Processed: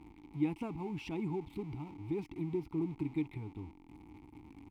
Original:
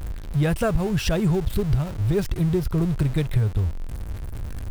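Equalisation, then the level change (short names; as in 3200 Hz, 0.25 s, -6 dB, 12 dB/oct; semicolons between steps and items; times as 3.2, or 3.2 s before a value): vowel filter u; high shelf 9900 Hz +11 dB; 0.0 dB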